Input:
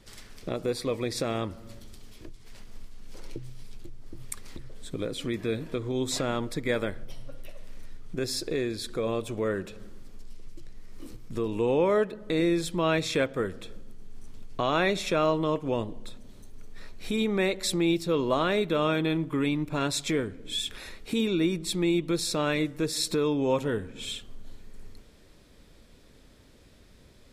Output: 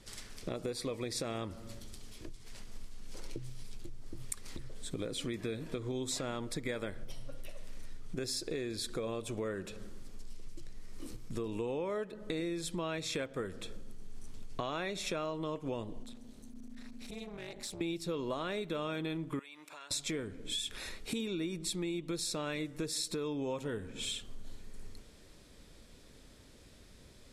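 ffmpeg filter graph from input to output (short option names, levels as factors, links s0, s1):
-filter_complex "[0:a]asettb=1/sr,asplit=3[s0][s1][s2];[s0]atrim=end=16.034[s3];[s1]atrim=start=16.03:end=17.81,asetpts=PTS-STARTPTS,afade=t=in:d=0.004:c=qsin,afade=t=out:st=1.776:d=0.004:c=qsin,acompressor=threshold=0.0141:ratio=3:attack=3.2:release=140:knee=1:detection=peak,aeval=exprs='clip(val(0),-1,0.0126)':c=same,tremolo=f=240:d=0.947[s4];[s2]atrim=start=17.806[s5];[s3][s4]acrossfade=d=0.004:c1=hsin:c2=qsin[s6];[s6][s5]acrossfade=d=0.004:c1=qsin:c2=hsin,asettb=1/sr,asplit=3[s7][s8][s9];[s7]atrim=end=19.394[s10];[s8]atrim=start=19.39:end=19.91,asetpts=PTS-STARTPTS,afade=t=in:d=0.004:c=qsin,afade=t=out:st=0.516:d=0.004:c=qsin,highpass=900,acompressor=threshold=0.00501:ratio=5:attack=3.2:release=140:knee=1:detection=peak[s11];[s9]atrim=start=19.906[s12];[s10][s11]acrossfade=d=0.004:c1=hsin:c2=qsin[s13];[s13][s12]acrossfade=d=0.004:c1=qsin:c2=hsin,lowpass=10000,highshelf=f=6900:g=10,acompressor=threshold=0.0251:ratio=6,volume=0.794"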